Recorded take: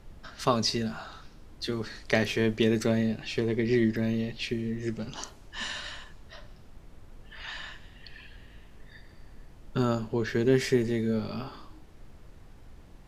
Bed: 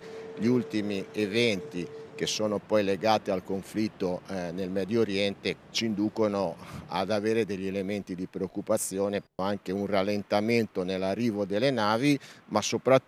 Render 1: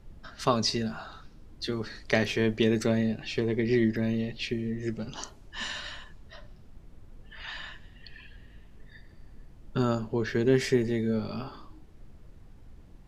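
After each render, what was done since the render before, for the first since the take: noise reduction 6 dB, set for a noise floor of -52 dBFS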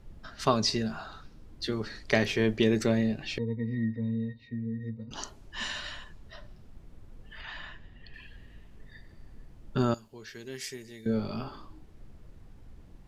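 3.38–5.11 s: pitch-class resonator A#, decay 0.11 s; 7.41–8.14 s: treble shelf 3.6 kHz -10.5 dB; 9.94–11.06 s: pre-emphasis filter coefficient 0.9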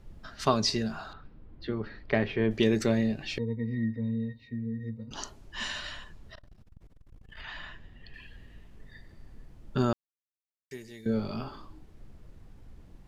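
1.13–2.51 s: distance through air 400 m; 6.35–7.37 s: transformer saturation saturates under 170 Hz; 9.93–10.71 s: mute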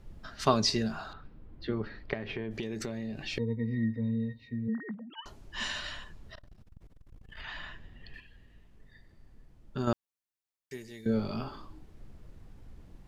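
2.13–3.33 s: compression 8:1, threshold -32 dBFS; 4.68–5.26 s: formants replaced by sine waves; 8.20–9.87 s: gain -7 dB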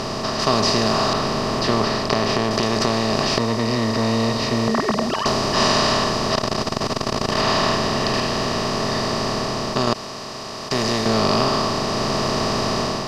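spectral levelling over time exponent 0.2; level rider gain up to 5.5 dB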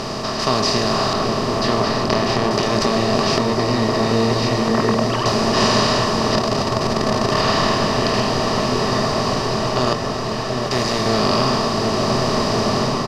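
doubling 24 ms -11 dB; delay with an opening low-pass 734 ms, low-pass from 750 Hz, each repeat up 1 oct, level -3 dB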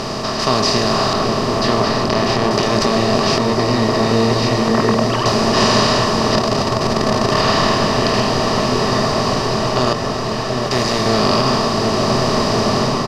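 trim +2.5 dB; peak limiter -2 dBFS, peak gain reduction 2.5 dB

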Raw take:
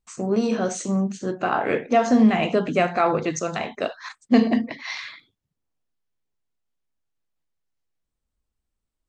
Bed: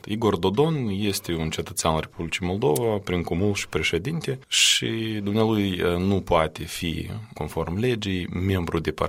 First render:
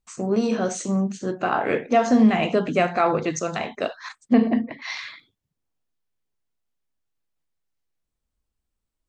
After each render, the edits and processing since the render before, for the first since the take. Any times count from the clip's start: 4.33–4.82 s: distance through air 390 m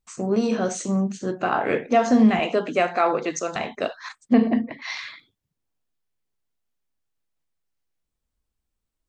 2.39–3.56 s: high-pass 290 Hz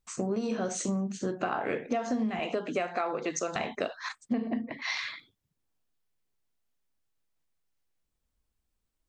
compression 10:1, threshold -27 dBFS, peak gain reduction 15.5 dB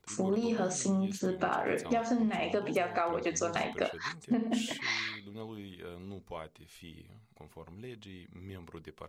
add bed -22.5 dB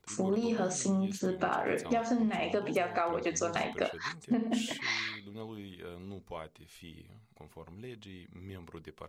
no audible change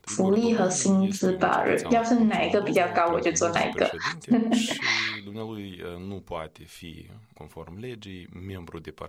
trim +8.5 dB

